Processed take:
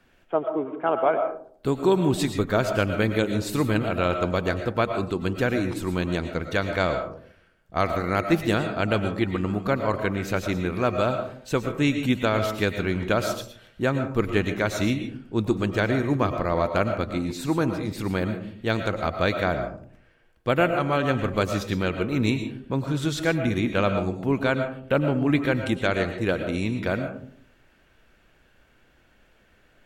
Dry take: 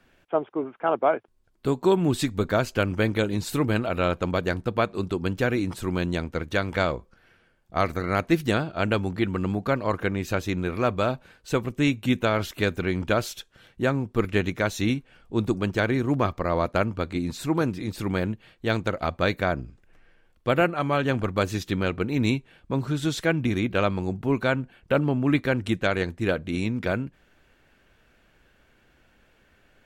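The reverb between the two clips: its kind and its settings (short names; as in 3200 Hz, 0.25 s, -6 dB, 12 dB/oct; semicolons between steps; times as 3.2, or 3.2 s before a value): digital reverb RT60 0.56 s, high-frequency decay 0.35×, pre-delay 75 ms, DRR 7 dB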